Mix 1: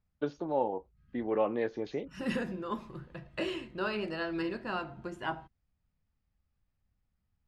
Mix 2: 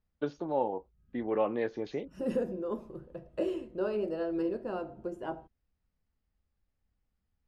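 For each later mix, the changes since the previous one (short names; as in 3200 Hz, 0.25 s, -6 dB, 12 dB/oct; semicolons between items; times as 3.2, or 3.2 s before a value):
second voice: add ten-band EQ 125 Hz -7 dB, 500 Hz +9 dB, 1000 Hz -6 dB, 2000 Hz -12 dB, 4000 Hz -11 dB, 8000 Hz -4 dB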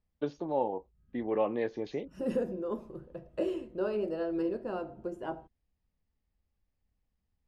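first voice: add bell 1400 Hz -7 dB 0.33 oct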